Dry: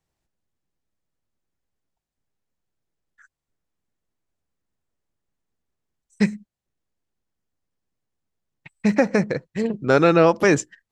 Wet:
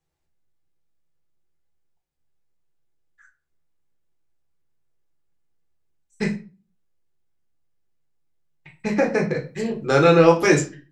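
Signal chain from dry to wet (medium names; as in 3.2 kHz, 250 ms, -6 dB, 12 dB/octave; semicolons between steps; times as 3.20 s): 9.35–10.59 s: treble shelf 4.6 kHz +10 dB; reverberation RT60 0.35 s, pre-delay 6 ms, DRR 0 dB; trim -4.5 dB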